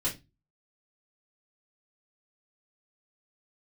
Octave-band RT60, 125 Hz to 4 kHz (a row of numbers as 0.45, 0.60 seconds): 0.45, 0.35, 0.25, 0.20, 0.20, 0.20 seconds